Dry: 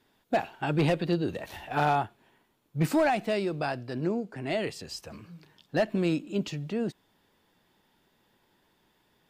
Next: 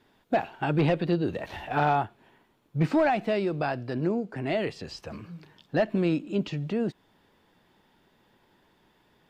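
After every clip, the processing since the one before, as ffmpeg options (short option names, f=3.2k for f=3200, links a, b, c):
-filter_complex "[0:a]acrossover=split=5700[a][b];[b]acompressor=threshold=-58dB:ratio=4:attack=1:release=60[c];[a][c]amix=inputs=2:normalize=0,highshelf=f=4.8k:g=-9,asplit=2[d][e];[e]acompressor=threshold=-35dB:ratio=6,volume=-2dB[f];[d][f]amix=inputs=2:normalize=0"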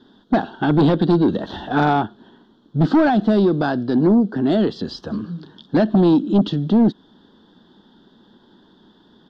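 -filter_complex "[0:a]firequalizer=gain_entry='entry(130,0);entry(210,13);entry(560,0);entry(1600,3);entry(2300,-23);entry(3300,9);entry(8900,-18)':delay=0.05:min_phase=1,asplit=2[a][b];[b]aeval=exprs='0.501*sin(PI/2*2.51*val(0)/0.501)':c=same,volume=-6dB[c];[a][c]amix=inputs=2:normalize=0,volume=-3.5dB"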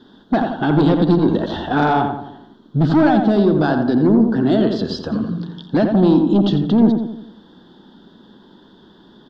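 -filter_complex "[0:a]alimiter=limit=-14dB:level=0:latency=1:release=136,asplit=2[a][b];[b]adelay=86,lowpass=f=1.8k:p=1,volume=-4.5dB,asplit=2[c][d];[d]adelay=86,lowpass=f=1.8k:p=1,volume=0.5,asplit=2[e][f];[f]adelay=86,lowpass=f=1.8k:p=1,volume=0.5,asplit=2[g][h];[h]adelay=86,lowpass=f=1.8k:p=1,volume=0.5,asplit=2[i][j];[j]adelay=86,lowpass=f=1.8k:p=1,volume=0.5,asplit=2[k][l];[l]adelay=86,lowpass=f=1.8k:p=1,volume=0.5[m];[a][c][e][g][i][k][m]amix=inputs=7:normalize=0,volume=4dB"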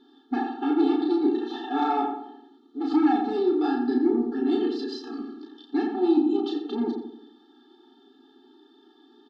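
-filter_complex "[0:a]asplit=2[a][b];[b]adelay=33,volume=-3dB[c];[a][c]amix=inputs=2:normalize=0,afftfilt=real='re*eq(mod(floor(b*sr/1024/230),2),1)':imag='im*eq(mod(floor(b*sr/1024/230),2),1)':win_size=1024:overlap=0.75,volume=-7.5dB"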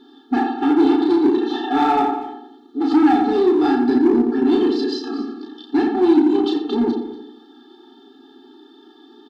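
-filter_complex "[0:a]asplit=2[a][b];[b]asoftclip=type=hard:threshold=-25dB,volume=-3dB[c];[a][c]amix=inputs=2:normalize=0,aecho=1:1:239:0.158,volume=4.5dB"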